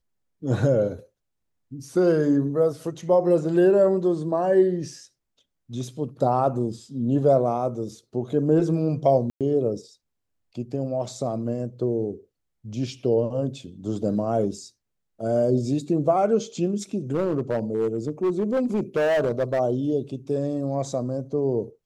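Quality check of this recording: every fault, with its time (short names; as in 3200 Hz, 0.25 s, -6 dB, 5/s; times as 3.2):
9.3–9.41 gap 0.107 s
17.11–19.6 clipped -18.5 dBFS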